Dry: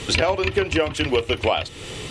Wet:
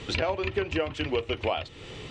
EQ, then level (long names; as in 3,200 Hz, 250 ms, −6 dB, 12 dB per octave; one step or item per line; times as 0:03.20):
high-frequency loss of the air 110 metres
−7.0 dB